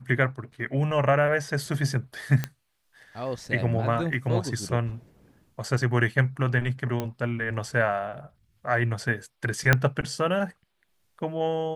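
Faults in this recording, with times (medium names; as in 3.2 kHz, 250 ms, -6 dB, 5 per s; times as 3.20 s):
2.44 s: pop -13 dBFS
7.00 s: pop -15 dBFS
9.73 s: pop -4 dBFS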